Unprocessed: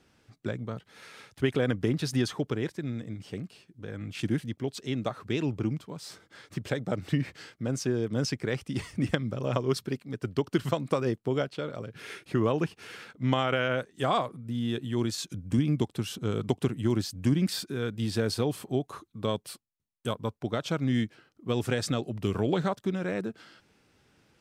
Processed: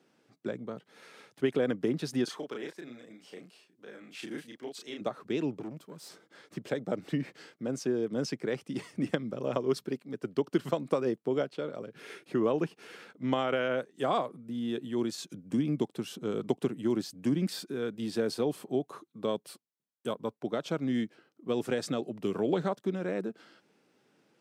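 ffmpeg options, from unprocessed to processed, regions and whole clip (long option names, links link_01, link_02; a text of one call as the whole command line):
ffmpeg -i in.wav -filter_complex "[0:a]asettb=1/sr,asplit=3[link_01][link_02][link_03];[link_01]atrim=end=2.244[link_04];[link_02]atrim=start=2.24:end=5.01,asetpts=PTS-STARTPTS,afade=type=in:duration=0.004:curve=qsin,afade=type=out:start_time=2.766:duration=0.004:curve=qsin,highpass=frequency=910:poles=1,asplit=2[link_05][link_06];[link_06]adelay=33,volume=-2.5dB[link_07];[link_05][link_07]amix=inputs=2:normalize=0,atrim=end_sample=122157[link_08];[link_03]atrim=start=5.006[link_09];[link_04][link_08]acrossfade=duration=0.004:curve1=hsin:curve2=qsin[link_10];[link_10][link_09]acrossfade=duration=0.004:curve1=qsin:curve2=hsin,asettb=1/sr,asplit=3[link_11][link_12][link_13];[link_11]atrim=end=5.604[link_14];[link_12]atrim=start=5.6:end=6.09,asetpts=PTS-STARTPTS,afade=type=in:duration=0.004:curve=qsin,afade=type=out:start_time=0.486:duration=0.004:curve=qsin,highshelf=frequency=8700:gain=11,aeval=exprs='(tanh(44.7*val(0)+0.5)-tanh(0.5))/44.7':channel_layout=same[link_15];[link_13]atrim=start=6.086[link_16];[link_14][link_15]acrossfade=duration=0.004:curve1=hsin:curve2=qsin[link_17];[link_17][link_16]acrossfade=duration=0.004:curve1=qsin:curve2=hsin,highpass=frequency=150:width=0.5412,highpass=frequency=150:width=1.3066,equalizer=frequency=430:width_type=o:width=2.2:gain=6,volume=-6dB" out.wav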